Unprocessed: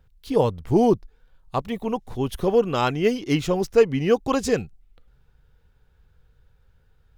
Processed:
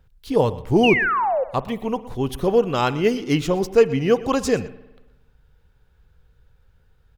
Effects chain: painted sound fall, 0.83–1.44, 490–3000 Hz -22 dBFS; on a send: echo 0.12 s -19 dB; on the sum: spring tank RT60 1.1 s, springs 52 ms, chirp 65 ms, DRR 17.5 dB; gain +1.5 dB

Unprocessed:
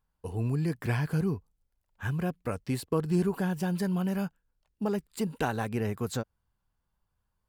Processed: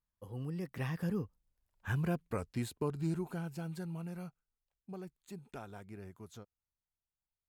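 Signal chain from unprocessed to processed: Doppler pass-by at 1.89, 35 m/s, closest 22 m; gain -2.5 dB

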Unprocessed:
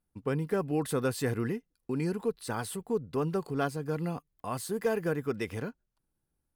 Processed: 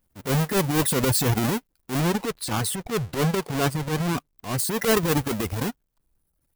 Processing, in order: half-waves squared off; reverb removal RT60 0.78 s; high shelf 9900 Hz +11 dB, from 2 s +2 dB, from 4.59 s +10.5 dB; transient shaper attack -11 dB, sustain +7 dB; gain +6 dB

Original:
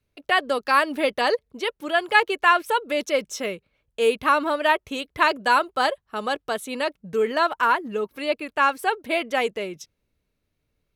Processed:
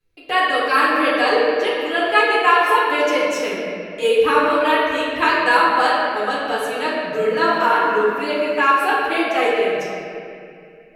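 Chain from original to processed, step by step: 7.42–8.91 crackle 460/s -44 dBFS; flange 0.55 Hz, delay 5.9 ms, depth 1.1 ms, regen +39%; reverb RT60 2.5 s, pre-delay 5 ms, DRR -8 dB

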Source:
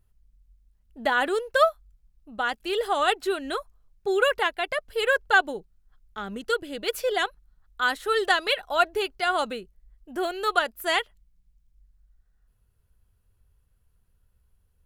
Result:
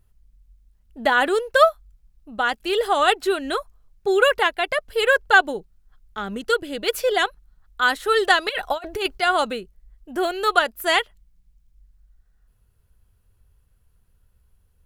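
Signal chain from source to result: 8.49–9.18 negative-ratio compressor -29 dBFS, ratio -0.5; gain +5 dB

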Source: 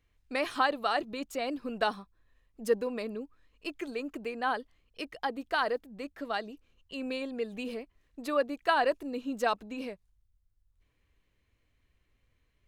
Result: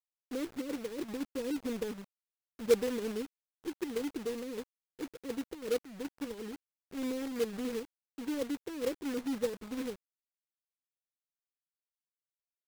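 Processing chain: steep low-pass 510 Hz 96 dB/oct; low shelf 100 Hz -4.5 dB; companded quantiser 4-bit; gain +1.5 dB

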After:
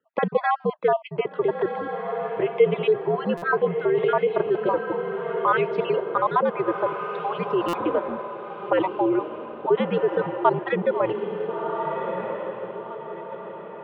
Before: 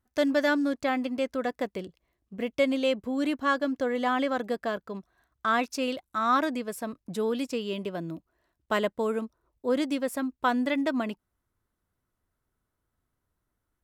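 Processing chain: random spectral dropouts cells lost 36%; band shelf 750 Hz +10.5 dB; on a send: diffused feedback echo 1.413 s, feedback 41%, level -9.5 dB; on the sum: mistuned SSB -93 Hz 300–3200 Hz; in parallel at -2.5 dB: negative-ratio compressor -24 dBFS, ratio -0.5; on the sum: stuck buffer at 3.37/7.68, samples 256, times 8; gain -2 dB

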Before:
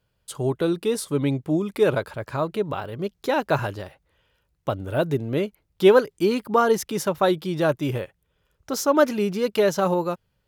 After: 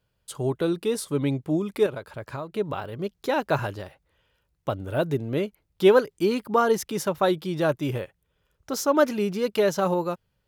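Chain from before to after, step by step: 1.86–2.56 compressor 5:1, threshold -29 dBFS, peak gain reduction 10.5 dB; gain -2 dB

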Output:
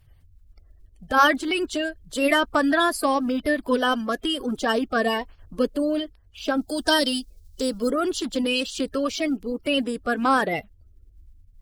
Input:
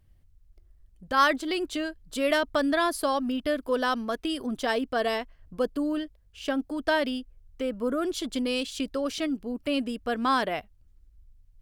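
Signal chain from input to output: bin magnitudes rounded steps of 30 dB; 4.56–5.56 notch 2000 Hz, Q 10; 6.61–7.91 resonant high shelf 3200 Hz +12 dB, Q 1.5; gain +5 dB

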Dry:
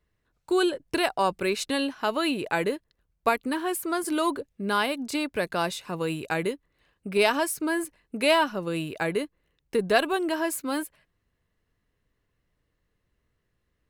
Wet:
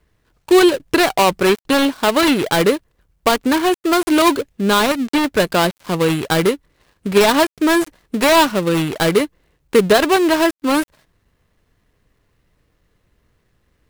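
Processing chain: switching dead time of 0.21 ms; maximiser +14 dB; gain -1 dB

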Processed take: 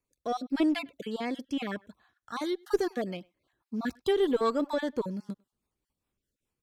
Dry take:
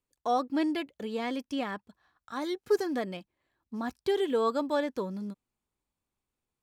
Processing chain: random spectral dropouts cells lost 25%; rotary speaker horn 0.9 Hz, later 5 Hz, at 1.85; speakerphone echo 0.1 s, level -26 dB; in parallel at -5 dB: one-sided clip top -32 dBFS; on the sum: gain +1 dB

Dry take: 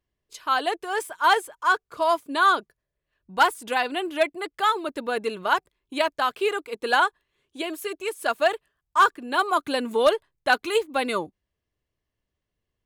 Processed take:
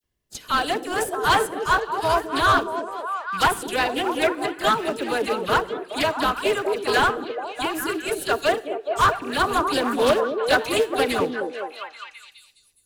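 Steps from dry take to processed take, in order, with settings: rattling part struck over -41 dBFS, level -31 dBFS; high shelf 4100 Hz +8 dB; dispersion lows, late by 40 ms, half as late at 2100 Hz; in parallel at -10.5 dB: sample-and-hold 41×; on the sum: soft clip -11 dBFS, distortion -18 dB; delay with a stepping band-pass 0.209 s, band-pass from 330 Hz, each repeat 0.7 oct, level -1 dB; on a send at -20 dB: reverb RT60 0.65 s, pre-delay 47 ms; on the sum: Doppler distortion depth 0.14 ms; gain +1 dB

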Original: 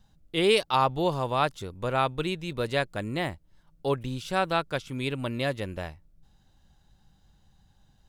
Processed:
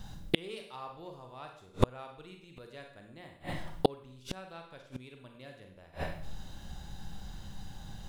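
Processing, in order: in parallel at -11 dB: overloaded stage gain 21.5 dB; on the sum: Schroeder reverb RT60 0.62 s, combs from 32 ms, DRR 3 dB; flipped gate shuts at -22 dBFS, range -37 dB; gain +13 dB

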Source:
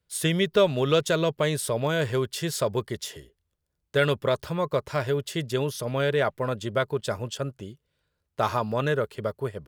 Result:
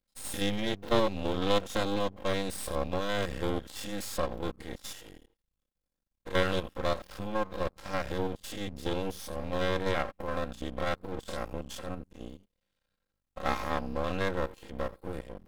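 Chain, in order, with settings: stepped spectrum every 50 ms; granular stretch 1.6×, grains 20 ms; half-wave rectifier

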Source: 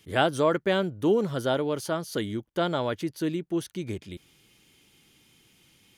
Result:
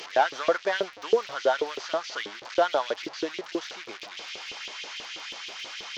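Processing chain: delta modulation 32 kbps, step -33.5 dBFS; LFO high-pass saw up 6.2 Hz 410–3300 Hz; crackle 34/s -42 dBFS

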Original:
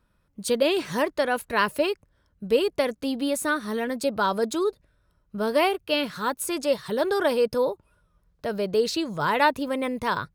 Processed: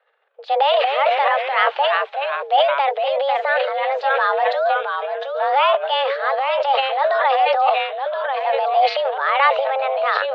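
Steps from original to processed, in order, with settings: echoes that change speed 0.155 s, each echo -2 st, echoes 3, each echo -6 dB; transient shaper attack -2 dB, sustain +11 dB; mistuned SSB +270 Hz 220–3300 Hz; gain +5 dB

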